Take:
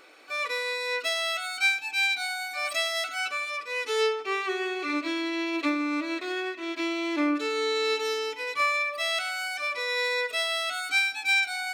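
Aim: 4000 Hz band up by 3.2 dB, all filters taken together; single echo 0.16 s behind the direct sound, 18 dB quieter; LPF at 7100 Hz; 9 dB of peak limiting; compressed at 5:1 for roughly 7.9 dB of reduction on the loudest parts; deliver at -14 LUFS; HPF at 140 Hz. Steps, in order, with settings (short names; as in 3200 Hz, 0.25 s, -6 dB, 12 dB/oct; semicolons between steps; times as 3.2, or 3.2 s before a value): HPF 140 Hz; LPF 7100 Hz; bell 4000 Hz +4 dB; compressor 5:1, threshold -27 dBFS; limiter -27.5 dBFS; echo 0.16 s -18 dB; gain +19.5 dB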